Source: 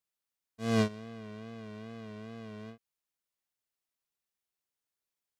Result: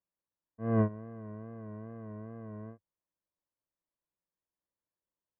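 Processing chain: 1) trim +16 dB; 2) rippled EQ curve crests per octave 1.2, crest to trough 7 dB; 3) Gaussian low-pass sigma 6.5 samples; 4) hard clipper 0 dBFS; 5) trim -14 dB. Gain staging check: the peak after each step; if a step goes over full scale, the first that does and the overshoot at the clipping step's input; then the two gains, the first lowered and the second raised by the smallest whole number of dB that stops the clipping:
-1.5 dBFS, -1.0 dBFS, -3.5 dBFS, -3.5 dBFS, -17.5 dBFS; nothing clips

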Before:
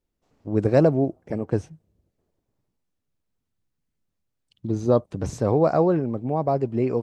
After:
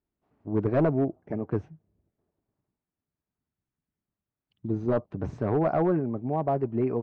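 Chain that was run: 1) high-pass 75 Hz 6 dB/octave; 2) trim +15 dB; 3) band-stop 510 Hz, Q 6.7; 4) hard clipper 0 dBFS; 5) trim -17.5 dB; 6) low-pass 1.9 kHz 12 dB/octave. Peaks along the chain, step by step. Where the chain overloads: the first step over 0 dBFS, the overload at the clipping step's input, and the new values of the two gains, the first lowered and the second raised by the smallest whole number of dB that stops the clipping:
-5.0 dBFS, +10.0 dBFS, +9.0 dBFS, 0.0 dBFS, -17.5 dBFS, -17.0 dBFS; step 2, 9.0 dB; step 2 +6 dB, step 5 -8.5 dB

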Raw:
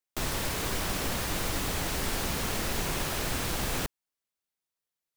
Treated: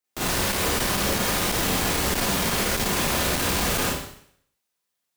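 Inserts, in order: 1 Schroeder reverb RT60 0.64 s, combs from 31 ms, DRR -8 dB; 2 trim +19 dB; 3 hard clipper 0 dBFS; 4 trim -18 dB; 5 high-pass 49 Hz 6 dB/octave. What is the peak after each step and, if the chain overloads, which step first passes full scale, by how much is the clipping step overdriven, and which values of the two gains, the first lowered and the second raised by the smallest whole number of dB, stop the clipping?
-9.0 dBFS, +10.0 dBFS, 0.0 dBFS, -18.0 dBFS, -13.5 dBFS; step 2, 10.0 dB; step 2 +9 dB, step 4 -8 dB

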